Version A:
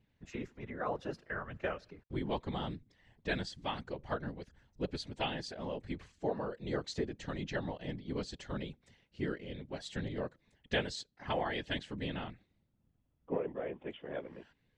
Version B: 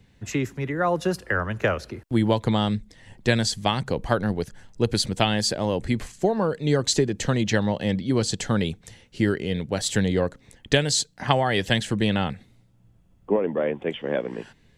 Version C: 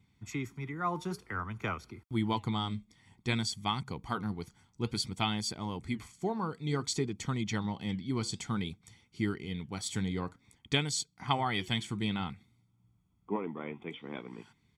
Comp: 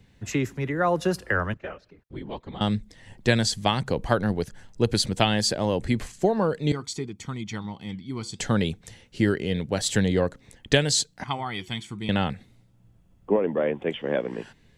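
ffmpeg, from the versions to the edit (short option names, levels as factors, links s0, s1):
-filter_complex "[2:a]asplit=2[s0][s1];[1:a]asplit=4[s2][s3][s4][s5];[s2]atrim=end=1.542[s6];[0:a]atrim=start=1.538:end=2.612[s7];[s3]atrim=start=2.608:end=6.722[s8];[s0]atrim=start=6.718:end=8.392[s9];[s4]atrim=start=8.388:end=11.242[s10];[s1]atrim=start=11.238:end=12.092[s11];[s5]atrim=start=12.088[s12];[s6][s7]acrossfade=d=0.004:c1=hsin:c2=hsin[s13];[s13][s8]acrossfade=d=0.004:c1=hsin:c2=hsin[s14];[s14][s9]acrossfade=d=0.004:c1=hsin:c2=hsin[s15];[s15][s10]acrossfade=d=0.004:c1=hsin:c2=hsin[s16];[s16][s11]acrossfade=d=0.004:c1=hsin:c2=hsin[s17];[s17][s12]acrossfade=d=0.004:c1=hsin:c2=hsin"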